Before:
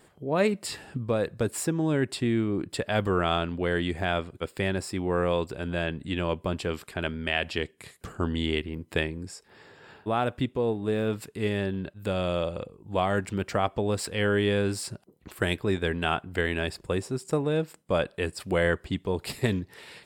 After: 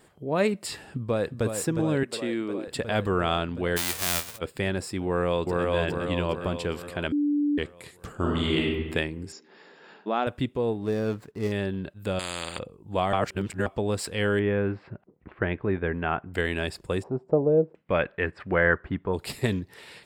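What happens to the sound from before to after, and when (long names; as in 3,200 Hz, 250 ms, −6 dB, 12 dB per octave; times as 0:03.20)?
0:00.80–0:01.45: delay throw 360 ms, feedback 80%, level −7 dB
0:02.03–0:02.68: high-pass filter 300 Hz
0:03.76–0:04.37: spectral envelope flattened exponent 0.1
0:05.05–0:05.67: delay throw 410 ms, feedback 55%, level −0.5 dB
0:07.12–0:07.58: beep over 292 Hz −21 dBFS
0:08.16–0:08.68: thrown reverb, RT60 1.3 s, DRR −2.5 dB
0:09.32–0:10.27: linear-phase brick-wall band-pass 160–7,300 Hz
0:10.81–0:11.52: running median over 15 samples
0:12.19–0:12.59: every bin compressed towards the loudest bin 4 to 1
0:13.13–0:13.66: reverse
0:14.39–0:16.34: low-pass filter 2,200 Hz 24 dB per octave
0:17.02–0:19.12: auto-filter low-pass saw down 0.74 Hz → 0.13 Hz 460–2,500 Hz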